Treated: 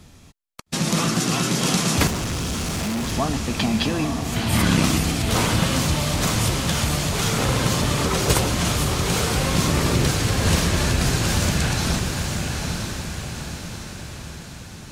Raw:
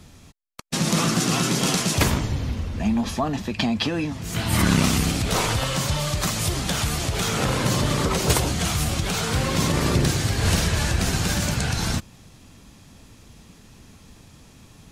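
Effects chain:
loose part that buzzes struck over −22 dBFS, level −29 dBFS
feedback delay with all-pass diffusion 901 ms, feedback 53%, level −4 dB
0:02.07–0:03.12: hard clipping −22.5 dBFS, distortion −18 dB

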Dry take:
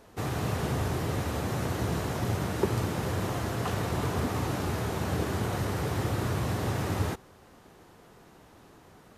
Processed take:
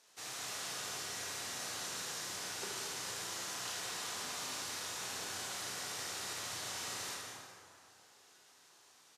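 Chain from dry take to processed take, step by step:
resonant band-pass 6,200 Hz, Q 1.1
ambience of single reflections 32 ms −4 dB, 76 ms −4.5 dB
dense smooth reverb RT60 2.4 s, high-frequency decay 0.5×, pre-delay 110 ms, DRR 1.5 dB
level +1 dB

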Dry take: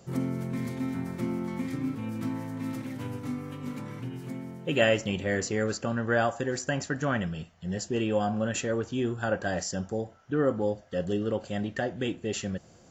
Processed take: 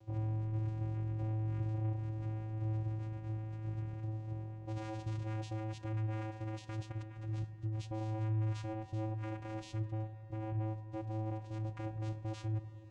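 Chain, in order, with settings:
dynamic equaliser 3,100 Hz, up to +4 dB, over −47 dBFS, Q 0.92
0:06.91–0:07.87: compressor whose output falls as the input rises −34 dBFS, ratio −0.5
brickwall limiter −20 dBFS, peak gain reduction 11 dB
flanger 0.44 Hz, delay 2.3 ms, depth 3.5 ms, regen +45%
soft clipping −35 dBFS, distortion −10 dB
channel vocoder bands 4, square 109 Hz
delay with a low-pass on its return 102 ms, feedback 82%, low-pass 1,900 Hz, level −14.5 dB
level +2.5 dB

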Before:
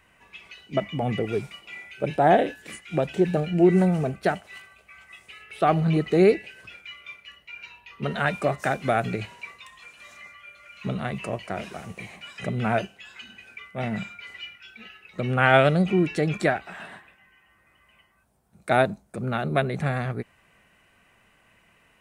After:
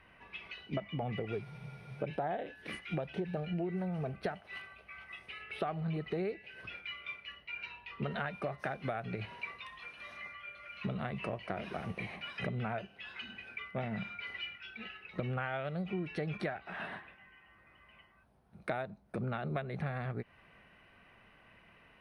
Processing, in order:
dynamic equaliser 290 Hz, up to −6 dB, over −34 dBFS, Q 1.5
downward compressor 12 to 1, threshold −33 dBFS, peak gain reduction 21 dB
moving average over 6 samples
frozen spectrum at 0:01.46, 0.54 s

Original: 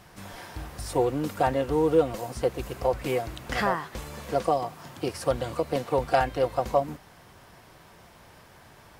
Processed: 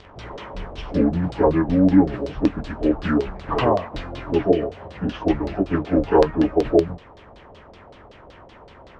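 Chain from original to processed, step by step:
phase-vocoder pitch shift without resampling −9 semitones
auto-filter low-pass saw down 5.3 Hz 520–4,500 Hz
level +7 dB

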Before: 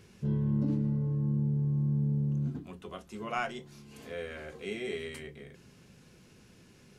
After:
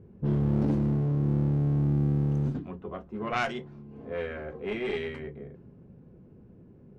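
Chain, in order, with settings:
asymmetric clip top −35.5 dBFS
low-pass that shuts in the quiet parts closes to 440 Hz, open at −28.5 dBFS
level +6.5 dB

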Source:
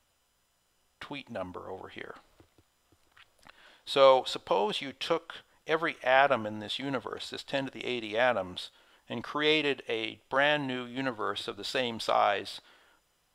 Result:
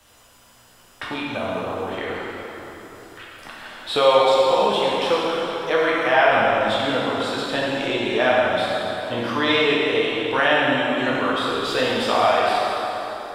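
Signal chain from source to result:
dense smooth reverb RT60 2.6 s, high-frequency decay 0.75×, DRR −7 dB
multiband upward and downward compressor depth 40%
level +2.5 dB

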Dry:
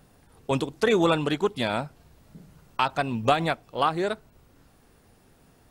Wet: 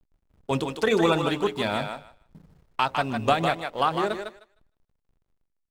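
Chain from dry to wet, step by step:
mains-hum notches 60/120/180/240/300/360/420/480/540/600 Hz
slack as between gear wheels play −43.5 dBFS
feedback echo with a high-pass in the loop 154 ms, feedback 17%, high-pass 460 Hz, level −5 dB

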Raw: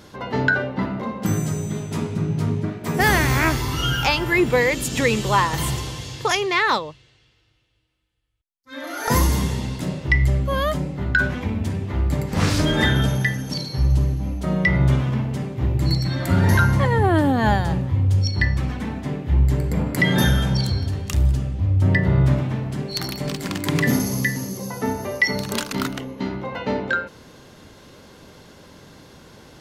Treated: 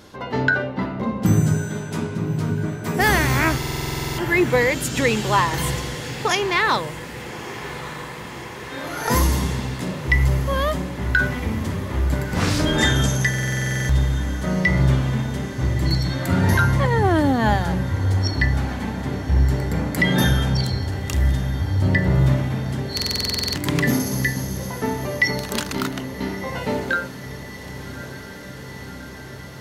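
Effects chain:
0:01.00–0:01.57: low-shelf EQ 240 Hz +10 dB
mains-hum notches 50/100/150/200 Hz
0:12.78–0:13.52: parametric band 7,100 Hz +15 dB 0.8 octaves
feedback delay with all-pass diffusion 1,206 ms, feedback 79%, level −15 dB
buffer that repeats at 0:03.58/0:13.29/0:22.95, samples 2,048, times 12

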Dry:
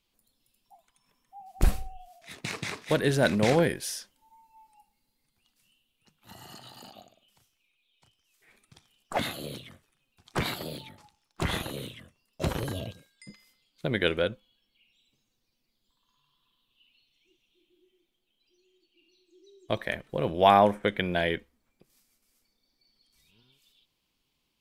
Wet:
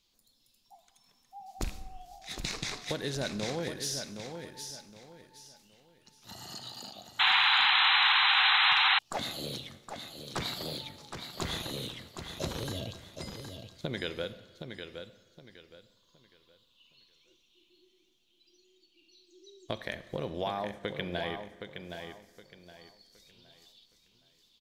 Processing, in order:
loose part that buzzes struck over −21 dBFS, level −16 dBFS
flat-topped bell 5,000 Hz +8 dB 1.2 octaves
downward compressor 6 to 1, threshold −32 dBFS, peak gain reduction 17.5 dB
repeating echo 767 ms, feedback 29%, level −7.5 dB
convolution reverb RT60 1.6 s, pre-delay 27 ms, DRR 14 dB
sound drawn into the spectrogram noise, 0:07.19–0:08.99, 740–4,100 Hz −24 dBFS

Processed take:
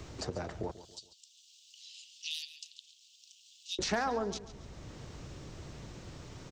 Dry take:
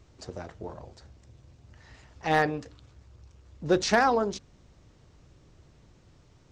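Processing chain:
0:00.71–0:03.79: Butterworth high-pass 2,900 Hz 72 dB per octave
downward compressor 2 to 1, threshold −42 dBFS, peak gain reduction 13 dB
repeating echo 139 ms, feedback 33%, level −16 dB
multiband upward and downward compressor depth 40%
level +7 dB

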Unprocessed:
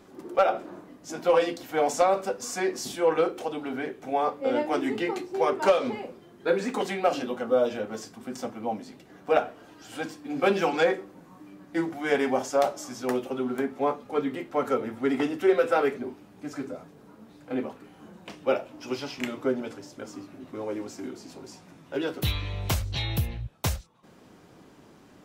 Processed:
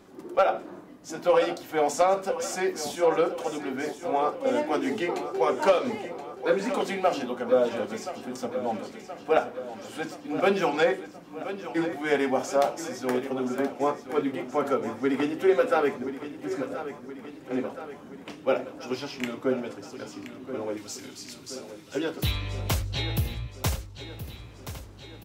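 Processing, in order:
0:20.77–0:21.95: drawn EQ curve 110 Hz 0 dB, 550 Hz −15 dB, 3,700 Hz +9 dB
repeating echo 1,025 ms, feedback 59%, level −12 dB

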